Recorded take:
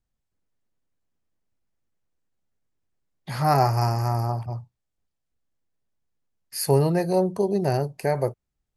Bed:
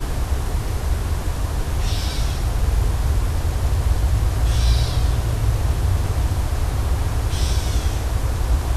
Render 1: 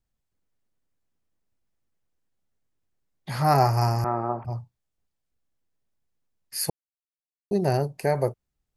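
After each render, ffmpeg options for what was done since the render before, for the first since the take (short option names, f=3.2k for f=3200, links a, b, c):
-filter_complex "[0:a]asettb=1/sr,asplit=3[a][b][c];[a]atrim=end=4.044[d];[b]atrim=start=4.04:end=4.45,asetpts=PTS-STARTPTS,afade=t=in:d=0.004:c=qsin,afade=t=out:st=0.406:d=0.004:c=qsin,highpass=220,equalizer=f=230:t=q:w=4:g=4,equalizer=f=350:t=q:w=4:g=6,equalizer=f=540:t=q:w=4:g=4,equalizer=f=1.3k:t=q:w=4:g=6,lowpass=f=2.2k:w=0.5412,lowpass=f=2.2k:w=1.3066[e];[c]atrim=start=4.446[f];[d][e]acrossfade=d=0.004:c1=hsin:c2=qsin[g];[g][f]acrossfade=d=0.004:c1=qsin:c2=hsin,asplit=3[h][i][j];[h]atrim=end=6.7,asetpts=PTS-STARTPTS,afade=t=out:st=6.696:d=0.004:c=hsin[k];[i]atrim=start=6.7:end=7.51,asetpts=PTS-STARTPTS,volume=0[l];[j]atrim=start=7.51,asetpts=PTS-STARTPTS,afade=t=in:d=0.004:c=hsin[m];[k][l][m]concat=n=3:v=0:a=1"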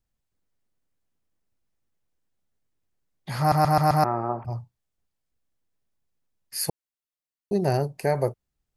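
-filter_complex "[0:a]asplit=6[a][b][c][d][e][f];[a]atrim=end=3.522[g];[b]atrim=start=3.388:end=3.522[h];[c]atrim=start=3.388:end=3.522[i];[d]atrim=start=3.388:end=3.522[j];[e]atrim=start=3.388:end=3.522[k];[f]atrim=start=4.038[l];[g][h]acrossfade=d=0.004:c1=hsin:c2=hsin[m];[m][i]acrossfade=d=0.004:c1=hsin:c2=hsin[n];[n][j]acrossfade=d=0.004:c1=hsin:c2=hsin[o];[o][k]acrossfade=d=0.004:c1=hsin:c2=hsin[p];[p][l]acrossfade=d=0.004:c1=hsin:c2=hsin"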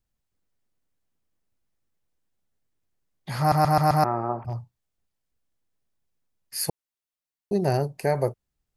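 -filter_complex "[0:a]asettb=1/sr,asplit=3[a][b][c];[a]atrim=end=4.374[d];[b]atrim=start=4.37:end=6.61,asetpts=PTS-STARTPTS,afade=t=in:d=0.004:c=qsin,afade=t=out:st=2.236:d=0.004:c=qsin,volume=22dB,asoftclip=hard,volume=-22dB[e];[c]atrim=start=6.606[f];[d][e]acrossfade=d=0.004:c1=hsin:c2=qsin[g];[g][f]acrossfade=d=0.004:c1=qsin:c2=hsin"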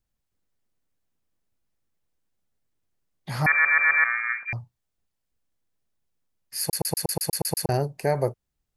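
-filter_complex "[0:a]asettb=1/sr,asplit=3[a][b][c];[a]atrim=end=3.464[d];[b]atrim=start=3.46:end=4.53,asetpts=PTS-STARTPTS,afade=t=in:d=0.004:c=qsin,afade=t=out:st=1.066:d=0.004:c=qsin,lowpass=f=2.1k:t=q:w=0.5098,lowpass=f=2.1k:t=q:w=0.6013,lowpass=f=2.1k:t=q:w=0.9,lowpass=f=2.1k:t=q:w=2.563,afreqshift=-2500[e];[c]atrim=start=4.526[f];[d][e]acrossfade=d=0.004:c1=hsin:c2=qsin[g];[g][f]acrossfade=d=0.004:c1=qsin:c2=hsin,asplit=10[h][i][j][k][l][m][n][o][p][q];[h]atrim=end=6.732[r];[i]atrim=start=6.608:end=6.732[s];[j]atrim=start=6.608:end=6.732[t];[k]atrim=start=6.608:end=6.732[u];[l]atrim=start=6.608:end=6.732[v];[m]atrim=start=6.608:end=6.732[w];[n]atrim=start=6.608:end=6.732[x];[o]atrim=start=6.608:end=6.732[y];[p]atrim=start=6.608:end=6.732[z];[q]atrim=start=7.688[aa];[r][s]acrossfade=d=0.004:c1=hsin:c2=hsin[ab];[ab][t]acrossfade=d=0.004:c1=hsin:c2=hsin[ac];[ac][u]acrossfade=d=0.004:c1=hsin:c2=hsin[ad];[ad][v]acrossfade=d=0.004:c1=hsin:c2=hsin[ae];[ae][w]acrossfade=d=0.004:c1=hsin:c2=hsin[af];[af][x]acrossfade=d=0.004:c1=hsin:c2=hsin[ag];[ag][y]acrossfade=d=0.004:c1=hsin:c2=hsin[ah];[ah][z]acrossfade=d=0.004:c1=hsin:c2=hsin[ai];[ai][aa]acrossfade=d=0.004:c1=hsin:c2=hsin"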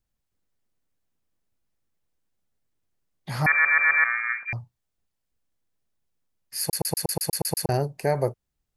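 -af anull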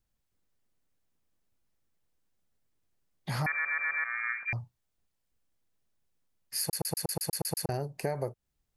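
-af "acompressor=threshold=-29dB:ratio=6"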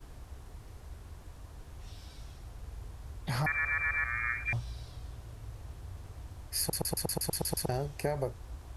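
-filter_complex "[1:a]volume=-25.5dB[a];[0:a][a]amix=inputs=2:normalize=0"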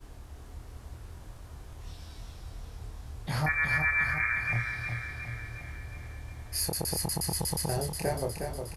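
-filter_complex "[0:a]asplit=2[a][b];[b]adelay=26,volume=-4dB[c];[a][c]amix=inputs=2:normalize=0,asplit=2[d][e];[e]aecho=0:1:361|722|1083|1444|1805|2166|2527:0.501|0.286|0.163|0.0928|0.0529|0.0302|0.0172[f];[d][f]amix=inputs=2:normalize=0"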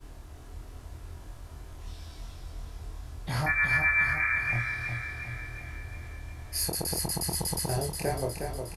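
-filter_complex "[0:a]asplit=2[a][b];[b]adelay=23,volume=-5.5dB[c];[a][c]amix=inputs=2:normalize=0"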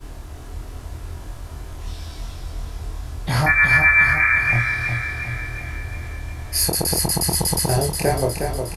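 -af "volume=10.5dB"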